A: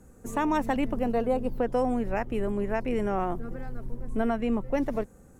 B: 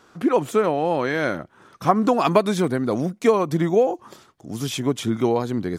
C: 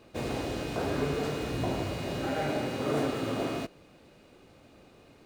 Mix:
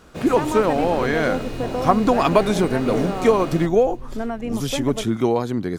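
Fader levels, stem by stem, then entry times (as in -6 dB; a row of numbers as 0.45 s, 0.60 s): 0.0 dB, +1.0 dB, +1.5 dB; 0.00 s, 0.00 s, 0.00 s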